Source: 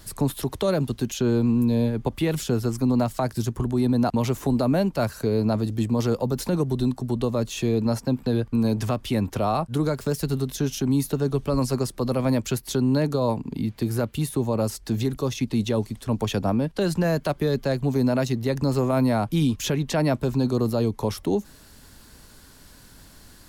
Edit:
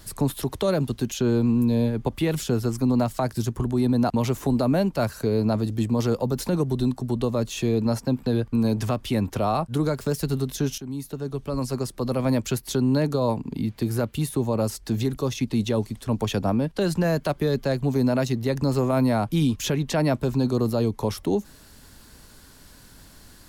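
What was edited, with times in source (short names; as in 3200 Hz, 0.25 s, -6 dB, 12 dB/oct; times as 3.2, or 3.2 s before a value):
10.78–12.35 fade in, from -13 dB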